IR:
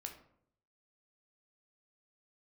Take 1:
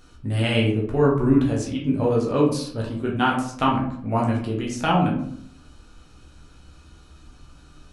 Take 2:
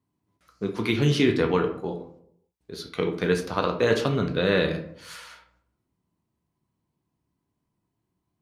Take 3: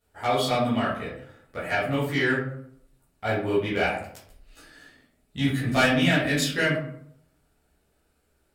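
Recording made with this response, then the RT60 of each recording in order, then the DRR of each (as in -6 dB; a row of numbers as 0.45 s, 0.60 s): 2; 0.65 s, 0.65 s, 0.65 s; -3.5 dB, 3.0 dB, -11.0 dB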